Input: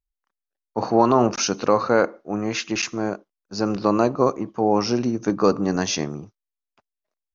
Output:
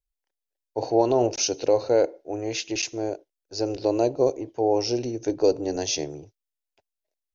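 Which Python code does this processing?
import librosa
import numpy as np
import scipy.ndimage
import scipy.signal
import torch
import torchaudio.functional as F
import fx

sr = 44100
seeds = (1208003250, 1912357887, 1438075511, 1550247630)

y = fx.dynamic_eq(x, sr, hz=1700.0, q=1.5, threshold_db=-39.0, ratio=4.0, max_db=-6)
y = fx.fixed_phaser(y, sr, hz=490.0, stages=4)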